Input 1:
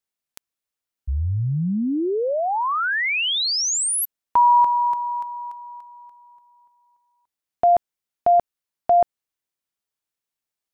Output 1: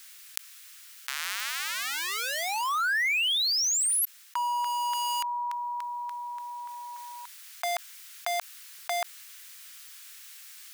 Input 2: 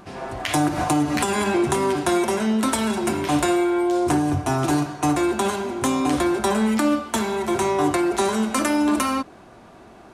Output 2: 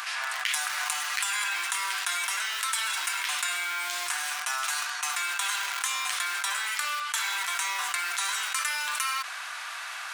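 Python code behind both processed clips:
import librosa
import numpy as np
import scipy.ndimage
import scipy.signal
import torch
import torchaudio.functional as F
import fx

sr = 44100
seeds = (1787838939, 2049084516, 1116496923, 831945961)

p1 = fx.schmitt(x, sr, flips_db=-23.5)
p2 = x + F.gain(torch.from_numpy(p1), -11.0).numpy()
p3 = fx.rider(p2, sr, range_db=5, speed_s=0.5)
p4 = scipy.signal.sosfilt(scipy.signal.butter(4, 1400.0, 'highpass', fs=sr, output='sos'), p3)
p5 = fx.env_flatten(p4, sr, amount_pct=70)
y = F.gain(torch.from_numpy(p5), -5.0).numpy()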